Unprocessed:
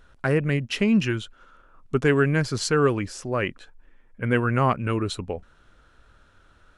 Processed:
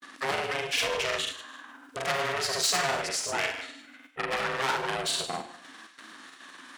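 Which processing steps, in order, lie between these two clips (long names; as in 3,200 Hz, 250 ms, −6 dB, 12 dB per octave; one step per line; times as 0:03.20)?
high-shelf EQ 4,400 Hz +3 dB
flutter between parallel walls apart 6.4 metres, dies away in 0.27 s
in parallel at 0 dB: output level in coarse steps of 19 dB
on the sum: ring modulation 270 Hz
noise gate with hold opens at −42 dBFS
on a send at −16 dB: convolution reverb RT60 0.60 s, pre-delay 76 ms
on the sum: soft clipping −27 dBFS, distortion −3 dB
high-pass filter 1,100 Hz 6 dB per octave
delay with a high-pass on its return 69 ms, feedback 41%, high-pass 1,800 Hz, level −7 dB
granular cloud, spray 39 ms, pitch spread up and down by 0 semitones
one half of a high-frequency compander encoder only
level +8.5 dB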